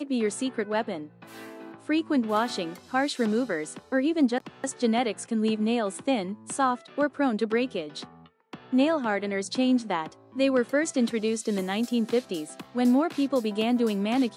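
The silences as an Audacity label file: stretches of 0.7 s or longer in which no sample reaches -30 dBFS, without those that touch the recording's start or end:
1.010000	1.890000	silence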